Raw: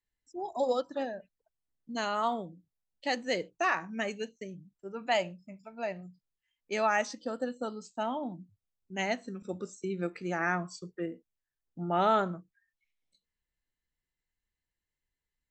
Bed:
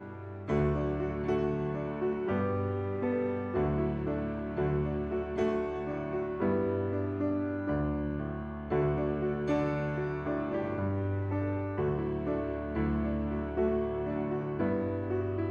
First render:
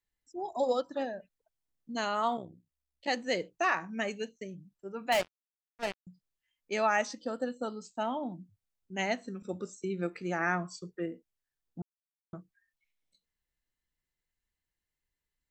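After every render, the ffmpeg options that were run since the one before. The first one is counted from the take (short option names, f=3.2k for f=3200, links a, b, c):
-filter_complex "[0:a]asettb=1/sr,asplit=3[a][b][c];[a]atrim=end=2.374[d];[b]atrim=start=2.37:end=3.08,asetpts=PTS-STARTPTS,afade=t=in:d=0.004:c=qsin,afade=t=out:st=0.706:d=0.004:c=qsin,tremolo=f=65:d=0.857[e];[c]atrim=start=3.076[f];[d][e]acrossfade=d=0.004:c1=hsin:c2=qsin[g];[g][f]acrossfade=d=0.004:c1=qsin:c2=hsin,asettb=1/sr,asplit=3[h][i][j];[h]atrim=end=5.124[k];[i]atrim=start=5.12:end=6.07,asetpts=PTS-STARTPTS,afade=t=in:d=0.004:c=qsin,afade=t=out:st=0.946:d=0.004:c=qsin,acrusher=bits=4:mix=0:aa=0.5[l];[j]atrim=start=6.066[m];[k][l]acrossfade=d=0.004:c1=hsin:c2=qsin[n];[n][m]acrossfade=d=0.004:c1=qsin:c2=hsin,asplit=3[o][p][q];[o]atrim=end=11.82,asetpts=PTS-STARTPTS,afade=t=out:st=11.816:d=0.004:c=hsin[r];[p]atrim=start=11.82:end=12.33,asetpts=PTS-STARTPTS,volume=0[s];[q]atrim=start=12.33,asetpts=PTS-STARTPTS,afade=t=in:d=0.004:c=hsin[t];[r][s][t]concat=n=3:v=0:a=1"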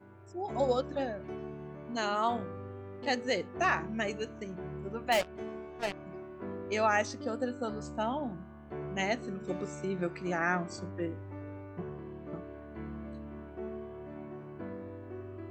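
-filter_complex "[1:a]volume=-11.5dB[a];[0:a][a]amix=inputs=2:normalize=0"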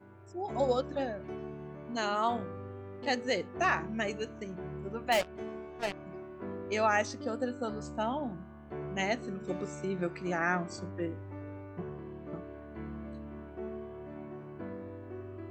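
-af anull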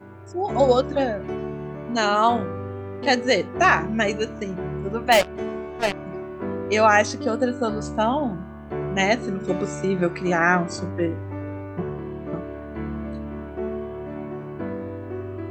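-af "volume=11.5dB"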